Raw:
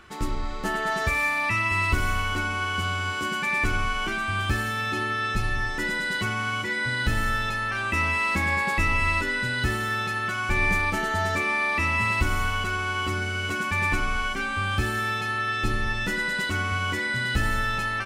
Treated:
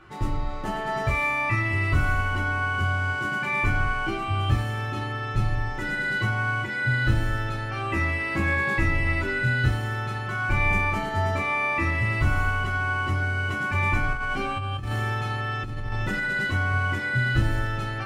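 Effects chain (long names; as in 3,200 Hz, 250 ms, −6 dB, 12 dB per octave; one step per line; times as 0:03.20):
high-shelf EQ 2,800 Hz −11.5 dB
convolution reverb, pre-delay 3 ms, DRR −3 dB
0:14.13–0:16.36: compressor whose output falls as the input rises −25 dBFS, ratio −1
level −2.5 dB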